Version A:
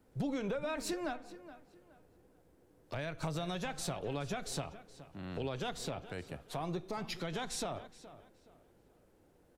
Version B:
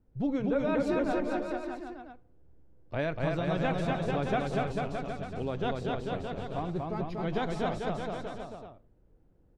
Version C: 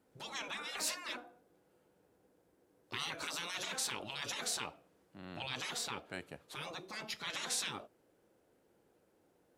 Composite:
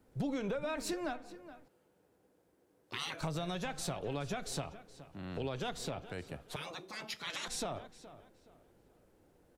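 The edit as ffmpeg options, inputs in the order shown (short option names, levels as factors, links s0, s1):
-filter_complex "[2:a]asplit=2[s0][s1];[0:a]asplit=3[s2][s3][s4];[s2]atrim=end=1.682[s5];[s0]atrim=start=1.678:end=3.212[s6];[s3]atrim=start=3.208:end=6.562[s7];[s1]atrim=start=6.558:end=7.482[s8];[s4]atrim=start=7.478[s9];[s5][s6]acrossfade=d=0.004:c1=hsin:c2=hsin[s10];[s10][s7]acrossfade=d=0.004:c1=hsin:c2=hsin[s11];[s11][s8]acrossfade=d=0.004:c1=hsin:c2=hsin[s12];[s12][s9]acrossfade=d=0.004:c1=hsin:c2=hsin"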